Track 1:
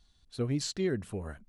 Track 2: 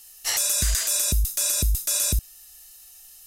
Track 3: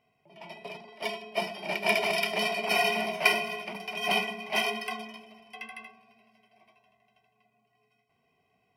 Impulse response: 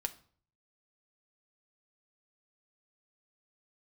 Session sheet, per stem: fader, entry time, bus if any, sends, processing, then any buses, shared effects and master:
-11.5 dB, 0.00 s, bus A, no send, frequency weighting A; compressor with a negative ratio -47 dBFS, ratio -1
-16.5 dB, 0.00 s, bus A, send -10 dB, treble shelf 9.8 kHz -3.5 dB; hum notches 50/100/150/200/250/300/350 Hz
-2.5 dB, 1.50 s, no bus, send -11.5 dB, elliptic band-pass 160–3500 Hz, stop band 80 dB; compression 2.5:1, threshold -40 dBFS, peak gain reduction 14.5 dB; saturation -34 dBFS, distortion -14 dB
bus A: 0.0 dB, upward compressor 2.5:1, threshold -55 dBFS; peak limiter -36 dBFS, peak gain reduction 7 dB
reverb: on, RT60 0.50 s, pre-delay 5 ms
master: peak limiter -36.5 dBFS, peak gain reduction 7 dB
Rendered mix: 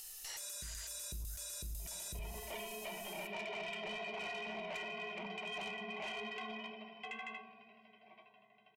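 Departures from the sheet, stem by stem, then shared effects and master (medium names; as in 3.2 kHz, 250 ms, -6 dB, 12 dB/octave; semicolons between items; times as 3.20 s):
stem 2 -16.5 dB -> -6.5 dB; reverb return +9.5 dB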